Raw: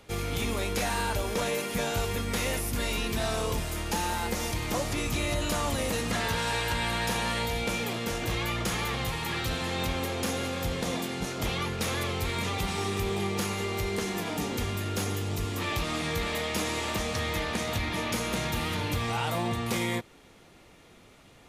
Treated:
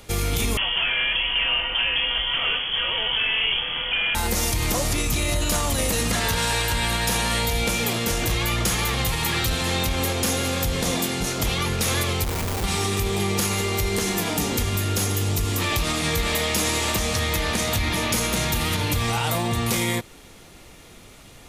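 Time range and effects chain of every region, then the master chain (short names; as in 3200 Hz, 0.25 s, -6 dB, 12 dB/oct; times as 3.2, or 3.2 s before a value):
0.57–4.15 delta modulation 32 kbps, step -40.5 dBFS + HPF 140 Hz 6 dB/oct + inverted band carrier 3300 Hz
12.24–12.64 rippled Chebyshev low-pass 3300 Hz, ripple 6 dB + Schmitt trigger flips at -34.5 dBFS
whole clip: low shelf 73 Hz +9.5 dB; limiter -21.5 dBFS; high shelf 4500 Hz +9.5 dB; gain +6 dB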